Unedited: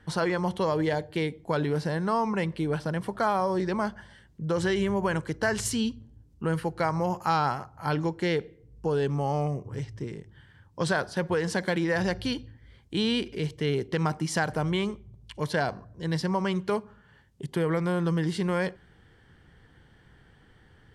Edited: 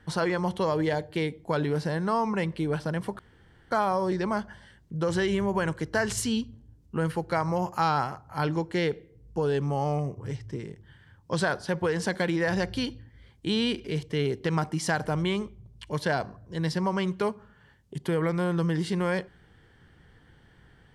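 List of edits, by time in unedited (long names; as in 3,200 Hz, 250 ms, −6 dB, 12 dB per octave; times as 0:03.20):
0:03.19: splice in room tone 0.52 s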